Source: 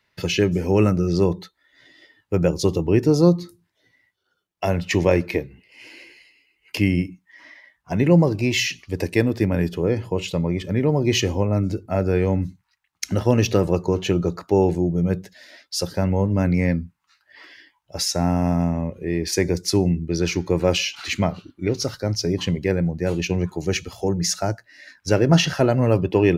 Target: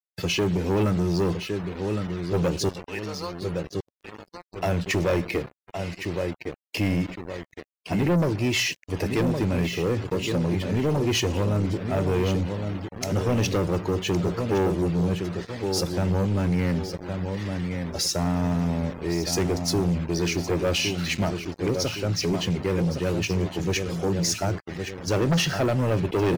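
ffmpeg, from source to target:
-filter_complex "[0:a]asettb=1/sr,asplit=3[a][b][c];[a]atrim=end=2.694[d];[b]atrim=start=2.69:end=3.42,asetpts=PTS-STARTPTS,afade=t=in:d=0.004:c=qsin,afade=t=out:st=0.726:d=0.004:c=qsin,asuperpass=centerf=2400:order=4:qfactor=0.59[e];[c]atrim=start=3.416[f];[d][e]acrossfade=d=0.004:c1=hsin:c2=qsin[g];[g][f]acrossfade=d=0.004:c1=qsin:c2=hsin,asplit=2[h][i];[i]adelay=1113,lowpass=f=4k:p=1,volume=-9dB,asplit=2[j][k];[k]adelay=1113,lowpass=f=4k:p=1,volume=0.37,asplit=2[l][m];[m]adelay=1113,lowpass=f=4k:p=1,volume=0.37,asplit=2[n][o];[o]adelay=1113,lowpass=f=4k:p=1,volume=0.37[p];[j][l][n][p]amix=inputs=4:normalize=0[q];[h][q]amix=inputs=2:normalize=0,acrusher=bits=5:mix=0:aa=0.000001,afftdn=nr=25:nf=-44,asoftclip=type=tanh:threshold=-18dB"

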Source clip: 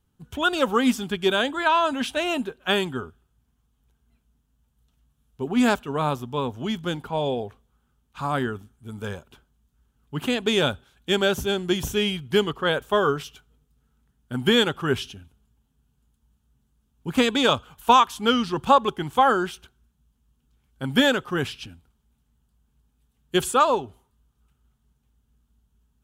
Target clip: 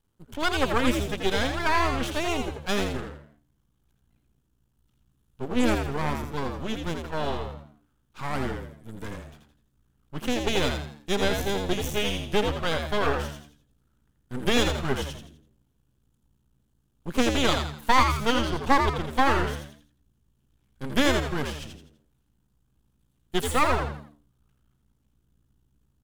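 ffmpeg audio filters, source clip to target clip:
-filter_complex "[0:a]aeval=exprs='max(val(0),0)':c=same,asplit=5[a][b][c][d][e];[b]adelay=83,afreqshift=73,volume=-5.5dB[f];[c]adelay=166,afreqshift=146,volume=-14.4dB[g];[d]adelay=249,afreqshift=219,volume=-23.2dB[h];[e]adelay=332,afreqshift=292,volume=-32.1dB[i];[a][f][g][h][i]amix=inputs=5:normalize=0"

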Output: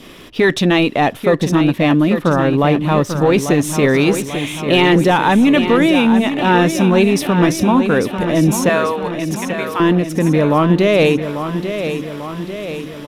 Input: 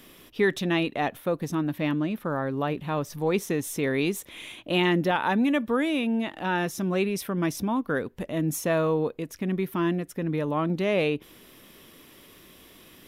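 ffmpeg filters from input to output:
-filter_complex "[0:a]asettb=1/sr,asplit=3[a][b][c];[a]atrim=end=8.694[d];[b]atrim=start=8.69:end=9.8,asetpts=PTS-STARTPTS,afade=t=in:d=0.004:c=qsin,afade=t=out:st=1.106:d=0.004:c=qsin,highpass=850[e];[c]atrim=start=9.796[f];[d][e]acrossfade=d=0.004:c1=hsin:c2=qsin[g];[g][f]acrossfade=d=0.004:c1=qsin:c2=hsin,apsyclip=20.5dB,adynamicequalizer=threshold=0.0355:dfrequency=1600:dqfactor=2.4:tfrequency=1600:tqfactor=2.4:attack=5:release=100:ratio=0.375:range=1.5:mode=cutabove:tftype=bell,adynamicsmooth=sensitivity=6.5:basefreq=5.3k,asplit=2[h][i];[i]aecho=0:1:843|1686|2529|3372|4215|5058|5901:0.355|0.206|0.119|0.0692|0.0402|0.0233|0.0135[j];[h][j]amix=inputs=2:normalize=0,volume=-6.5dB"

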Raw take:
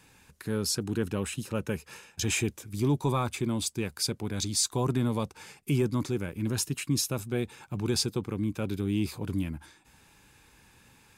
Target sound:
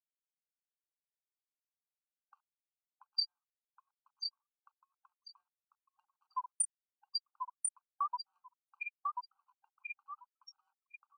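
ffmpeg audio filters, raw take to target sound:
-filter_complex "[0:a]areverse,highpass=f=310:w=0.5412,highpass=f=310:w=1.3066,aecho=1:1:5.1:0.52,afftfilt=real='re*gte(hypot(re,im),0.251)':imag='im*gte(hypot(re,im),0.251)':win_size=1024:overlap=0.75,equalizer=f=8.8k:w=0.31:g=9,asplit=2[a][b];[b]adelay=1038,lowpass=f=4.3k:p=1,volume=-8dB,asplit=2[c][d];[d]adelay=1038,lowpass=f=4.3k:p=1,volume=0.16,asplit=2[e][f];[f]adelay=1038,lowpass=f=4.3k:p=1,volume=0.16[g];[c][e][g]amix=inputs=3:normalize=0[h];[a][h]amix=inputs=2:normalize=0,acompressor=mode=upward:threshold=-34dB:ratio=2.5,anlmdn=0.001,acrossover=split=470[i][j];[j]acompressor=threshold=-43dB:ratio=10[k];[i][k]amix=inputs=2:normalize=0,highshelf=f=2.5k:g=5,agate=range=-41dB:threshold=-48dB:ratio=16:detection=peak,afftfilt=real='re*eq(mod(floor(b*sr/1024/790),2),1)':imag='im*eq(mod(floor(b*sr/1024/790),2),1)':win_size=1024:overlap=0.75,volume=9dB"

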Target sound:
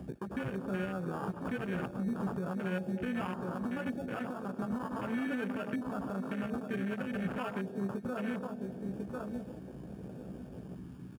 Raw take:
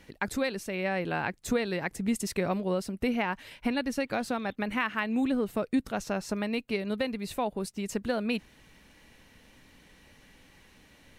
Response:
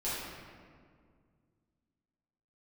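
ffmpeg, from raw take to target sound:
-filter_complex "[0:a]asplit=2[a][b];[b]adelay=16,volume=-5dB[c];[a][c]amix=inputs=2:normalize=0,acompressor=mode=upward:threshold=-35dB:ratio=2.5,acrusher=samples=22:mix=1:aa=0.000001,asplit=2[d][e];[1:a]atrim=start_sample=2205,adelay=78[f];[e][f]afir=irnorm=-1:irlink=0,volume=-17.5dB[g];[d][g]amix=inputs=2:normalize=0,acompressor=threshold=-28dB:ratio=2.5,highpass=57,lowshelf=f=85:g=-4.5,aecho=1:1:1046|2092|3138:0.316|0.0791|0.0198,alimiter=level_in=4dB:limit=-24dB:level=0:latency=1:release=223,volume=-4dB,equalizer=f=160:t=o:w=0.67:g=8,equalizer=f=1.6k:t=o:w=0.67:g=7,equalizer=f=10k:t=o:w=0.67:g=5,afwtdn=0.0112"

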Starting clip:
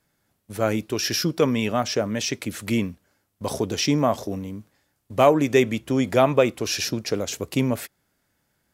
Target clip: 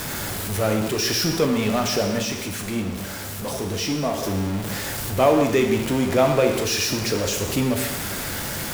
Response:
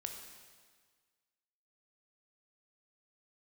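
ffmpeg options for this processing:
-filter_complex "[0:a]aeval=exprs='val(0)+0.5*0.0944*sgn(val(0))':c=same,asplit=3[a][b][c];[a]afade=t=out:st=2.19:d=0.02[d];[b]flanger=delay=8.6:depth=6.7:regen=-48:speed=1.3:shape=triangular,afade=t=in:st=2.19:d=0.02,afade=t=out:st=4.22:d=0.02[e];[c]afade=t=in:st=4.22:d=0.02[f];[d][e][f]amix=inputs=3:normalize=0[g];[1:a]atrim=start_sample=2205,afade=t=out:st=0.29:d=0.01,atrim=end_sample=13230[h];[g][h]afir=irnorm=-1:irlink=0"

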